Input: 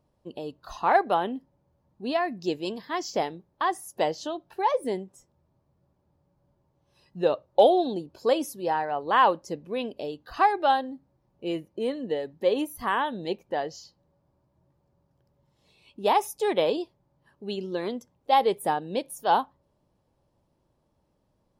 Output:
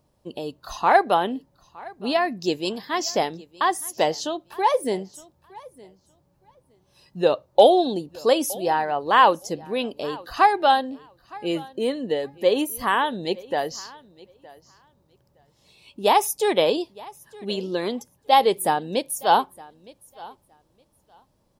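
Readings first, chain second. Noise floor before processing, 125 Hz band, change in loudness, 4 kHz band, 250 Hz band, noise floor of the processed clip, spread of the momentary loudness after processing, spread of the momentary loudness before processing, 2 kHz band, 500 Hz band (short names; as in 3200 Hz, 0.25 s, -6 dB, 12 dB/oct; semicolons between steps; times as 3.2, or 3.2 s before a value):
-72 dBFS, +4.0 dB, +4.5 dB, +7.5 dB, +4.0 dB, -66 dBFS, 18 LU, 16 LU, +5.5 dB, +4.0 dB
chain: high shelf 3700 Hz +8 dB; on a send: feedback echo 0.915 s, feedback 17%, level -22 dB; on the sum: gain +4 dB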